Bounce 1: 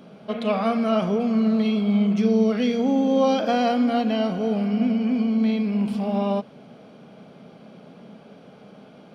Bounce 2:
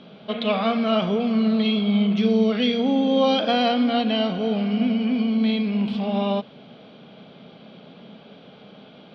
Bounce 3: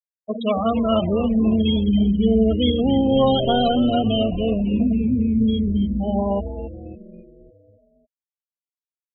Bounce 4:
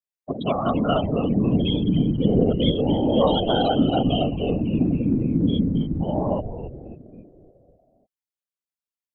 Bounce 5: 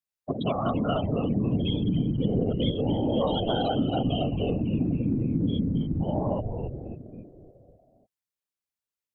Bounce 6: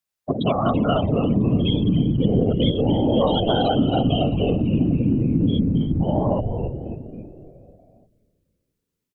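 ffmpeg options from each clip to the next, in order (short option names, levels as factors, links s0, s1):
-af "lowpass=f=3600:t=q:w=3.4"
-filter_complex "[0:a]bandreject=f=2400:w=11,afftfilt=real='re*gte(hypot(re,im),0.158)':imag='im*gte(hypot(re,im),0.158)':win_size=1024:overlap=0.75,asplit=2[s0][s1];[s1]asplit=6[s2][s3][s4][s5][s6][s7];[s2]adelay=275,afreqshift=-140,volume=0.316[s8];[s3]adelay=550,afreqshift=-280,volume=0.162[s9];[s4]adelay=825,afreqshift=-420,volume=0.0822[s10];[s5]adelay=1100,afreqshift=-560,volume=0.0422[s11];[s6]adelay=1375,afreqshift=-700,volume=0.0214[s12];[s7]adelay=1650,afreqshift=-840,volume=0.011[s13];[s8][s9][s10][s11][s12][s13]amix=inputs=6:normalize=0[s14];[s0][s14]amix=inputs=2:normalize=0,volume=1.26"
-af "afftfilt=real='hypot(re,im)*cos(2*PI*random(0))':imag='hypot(re,im)*sin(2*PI*random(1))':win_size=512:overlap=0.75,volume=1.58"
-af "equalizer=f=110:t=o:w=0.7:g=5,acompressor=threshold=0.0562:ratio=2.5"
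-filter_complex "[0:a]asplit=5[s0][s1][s2][s3][s4];[s1]adelay=332,afreqshift=-70,volume=0.112[s5];[s2]adelay=664,afreqshift=-140,volume=0.0537[s6];[s3]adelay=996,afreqshift=-210,volume=0.0257[s7];[s4]adelay=1328,afreqshift=-280,volume=0.0124[s8];[s0][s5][s6][s7][s8]amix=inputs=5:normalize=0,volume=2.11"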